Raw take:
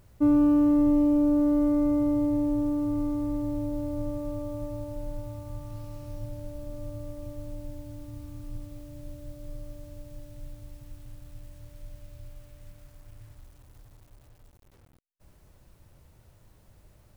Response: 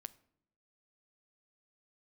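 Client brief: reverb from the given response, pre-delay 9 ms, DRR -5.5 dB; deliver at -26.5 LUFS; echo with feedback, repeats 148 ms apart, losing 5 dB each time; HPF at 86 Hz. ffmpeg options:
-filter_complex "[0:a]highpass=86,aecho=1:1:148|296|444|592|740|888|1036:0.562|0.315|0.176|0.0988|0.0553|0.031|0.0173,asplit=2[s0][s1];[1:a]atrim=start_sample=2205,adelay=9[s2];[s1][s2]afir=irnorm=-1:irlink=0,volume=3.35[s3];[s0][s3]amix=inputs=2:normalize=0"

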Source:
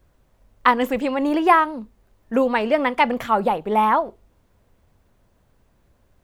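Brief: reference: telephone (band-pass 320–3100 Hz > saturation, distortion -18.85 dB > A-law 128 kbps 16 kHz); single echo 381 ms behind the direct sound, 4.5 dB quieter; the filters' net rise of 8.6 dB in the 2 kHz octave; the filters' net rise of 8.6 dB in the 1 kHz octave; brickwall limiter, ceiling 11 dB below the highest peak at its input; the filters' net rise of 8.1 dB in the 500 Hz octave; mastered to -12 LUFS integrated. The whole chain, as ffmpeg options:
-af "equalizer=f=500:t=o:g=8,equalizer=f=1000:t=o:g=6,equalizer=f=2000:t=o:g=8.5,alimiter=limit=0.631:level=0:latency=1,highpass=320,lowpass=3100,aecho=1:1:381:0.596,asoftclip=threshold=0.501,volume=1.68" -ar 16000 -c:a pcm_alaw

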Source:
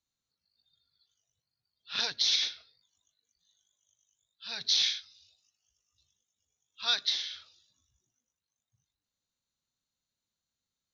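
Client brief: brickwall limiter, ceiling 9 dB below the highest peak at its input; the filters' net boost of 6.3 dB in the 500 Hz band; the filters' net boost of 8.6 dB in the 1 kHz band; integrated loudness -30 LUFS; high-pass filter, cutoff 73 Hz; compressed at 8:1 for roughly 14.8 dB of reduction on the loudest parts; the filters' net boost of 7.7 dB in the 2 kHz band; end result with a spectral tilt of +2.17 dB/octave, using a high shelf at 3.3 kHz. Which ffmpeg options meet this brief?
-af "highpass=73,equalizer=f=500:t=o:g=4.5,equalizer=f=1000:t=o:g=8,equalizer=f=2000:t=o:g=5,highshelf=f=3300:g=7,acompressor=threshold=0.0224:ratio=8,volume=2.99,alimiter=limit=0.106:level=0:latency=1"

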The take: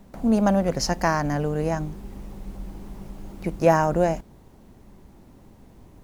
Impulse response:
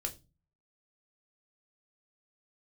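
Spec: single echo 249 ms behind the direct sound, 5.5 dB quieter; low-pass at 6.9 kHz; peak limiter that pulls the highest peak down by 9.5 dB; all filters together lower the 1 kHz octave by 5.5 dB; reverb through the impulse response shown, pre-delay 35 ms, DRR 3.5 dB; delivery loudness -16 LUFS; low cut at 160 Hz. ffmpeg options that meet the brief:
-filter_complex "[0:a]highpass=160,lowpass=6900,equalizer=f=1000:t=o:g=-7.5,alimiter=limit=0.158:level=0:latency=1,aecho=1:1:249:0.531,asplit=2[s0][s1];[1:a]atrim=start_sample=2205,adelay=35[s2];[s1][s2]afir=irnorm=-1:irlink=0,volume=0.631[s3];[s0][s3]amix=inputs=2:normalize=0,volume=2.82"

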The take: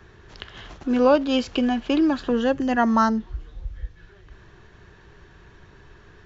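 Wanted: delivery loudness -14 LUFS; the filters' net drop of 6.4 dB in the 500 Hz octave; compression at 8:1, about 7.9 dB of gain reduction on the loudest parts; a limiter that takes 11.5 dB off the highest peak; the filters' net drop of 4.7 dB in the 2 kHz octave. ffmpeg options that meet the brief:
-af "equalizer=f=500:t=o:g=-7,equalizer=f=2000:t=o:g=-6,acompressor=threshold=0.0501:ratio=8,volume=13.3,alimiter=limit=0.562:level=0:latency=1"

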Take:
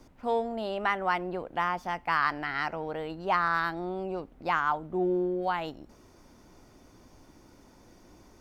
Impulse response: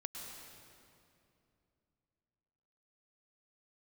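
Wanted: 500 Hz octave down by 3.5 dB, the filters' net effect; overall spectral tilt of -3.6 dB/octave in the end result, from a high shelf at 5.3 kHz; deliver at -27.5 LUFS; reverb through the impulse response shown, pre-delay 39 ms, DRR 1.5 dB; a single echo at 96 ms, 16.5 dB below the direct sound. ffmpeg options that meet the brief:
-filter_complex "[0:a]equalizer=f=500:t=o:g=-5,highshelf=f=5300:g=-6,aecho=1:1:96:0.15,asplit=2[s0][s1];[1:a]atrim=start_sample=2205,adelay=39[s2];[s1][s2]afir=irnorm=-1:irlink=0,volume=1[s3];[s0][s3]amix=inputs=2:normalize=0,volume=1.19"

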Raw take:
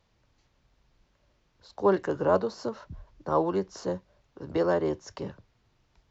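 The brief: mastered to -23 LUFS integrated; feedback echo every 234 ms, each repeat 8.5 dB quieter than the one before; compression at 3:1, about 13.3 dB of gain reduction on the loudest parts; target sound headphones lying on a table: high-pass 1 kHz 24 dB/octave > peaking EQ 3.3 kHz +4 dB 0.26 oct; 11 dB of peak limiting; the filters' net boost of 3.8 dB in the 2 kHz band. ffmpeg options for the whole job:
-af "equalizer=f=2000:t=o:g=5.5,acompressor=threshold=0.0158:ratio=3,alimiter=level_in=2.99:limit=0.0631:level=0:latency=1,volume=0.335,highpass=f=1000:w=0.5412,highpass=f=1000:w=1.3066,equalizer=f=3300:t=o:w=0.26:g=4,aecho=1:1:234|468|702|936:0.376|0.143|0.0543|0.0206,volume=28.2"

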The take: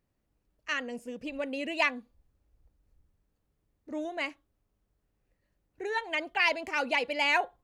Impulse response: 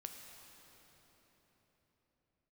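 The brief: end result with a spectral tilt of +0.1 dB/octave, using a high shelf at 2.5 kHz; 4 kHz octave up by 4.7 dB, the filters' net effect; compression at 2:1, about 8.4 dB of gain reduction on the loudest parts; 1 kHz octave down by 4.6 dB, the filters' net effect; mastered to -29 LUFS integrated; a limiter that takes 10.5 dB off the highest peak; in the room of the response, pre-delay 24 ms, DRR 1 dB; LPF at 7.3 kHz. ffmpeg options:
-filter_complex "[0:a]lowpass=7300,equalizer=f=1000:t=o:g=-7,highshelf=f=2500:g=5,equalizer=f=4000:t=o:g=3.5,acompressor=threshold=0.0178:ratio=2,alimiter=level_in=1.68:limit=0.0631:level=0:latency=1,volume=0.596,asplit=2[s0][s1];[1:a]atrim=start_sample=2205,adelay=24[s2];[s1][s2]afir=irnorm=-1:irlink=0,volume=1.41[s3];[s0][s3]amix=inputs=2:normalize=0,volume=2.51"

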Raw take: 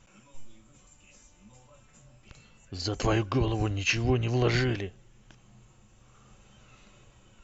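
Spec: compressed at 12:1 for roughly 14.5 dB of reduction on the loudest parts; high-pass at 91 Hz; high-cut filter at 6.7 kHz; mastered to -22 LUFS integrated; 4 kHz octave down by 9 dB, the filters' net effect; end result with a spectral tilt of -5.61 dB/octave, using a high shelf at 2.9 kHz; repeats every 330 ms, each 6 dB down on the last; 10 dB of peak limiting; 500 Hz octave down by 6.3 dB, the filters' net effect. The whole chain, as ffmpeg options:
-af "highpass=91,lowpass=6700,equalizer=f=500:t=o:g=-9,highshelf=f=2900:g=-7.5,equalizer=f=4000:t=o:g=-6,acompressor=threshold=0.0112:ratio=12,alimiter=level_in=6.31:limit=0.0631:level=0:latency=1,volume=0.158,aecho=1:1:330|660|990|1320|1650|1980:0.501|0.251|0.125|0.0626|0.0313|0.0157,volume=31.6"

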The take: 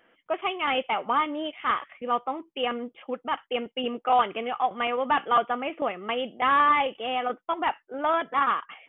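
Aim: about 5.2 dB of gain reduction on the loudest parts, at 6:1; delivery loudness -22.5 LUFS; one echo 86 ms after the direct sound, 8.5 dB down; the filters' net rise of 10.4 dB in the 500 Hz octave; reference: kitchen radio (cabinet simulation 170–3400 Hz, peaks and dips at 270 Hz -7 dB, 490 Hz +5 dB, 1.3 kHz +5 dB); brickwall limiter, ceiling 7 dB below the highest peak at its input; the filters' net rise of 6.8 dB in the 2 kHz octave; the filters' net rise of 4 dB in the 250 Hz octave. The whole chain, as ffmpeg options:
-af "equalizer=f=250:t=o:g=8,equalizer=f=500:t=o:g=6,equalizer=f=2000:t=o:g=7,acompressor=threshold=0.112:ratio=6,alimiter=limit=0.141:level=0:latency=1,highpass=170,equalizer=f=270:t=q:w=4:g=-7,equalizer=f=490:t=q:w=4:g=5,equalizer=f=1300:t=q:w=4:g=5,lowpass=f=3400:w=0.5412,lowpass=f=3400:w=1.3066,aecho=1:1:86:0.376,volume=1.33"

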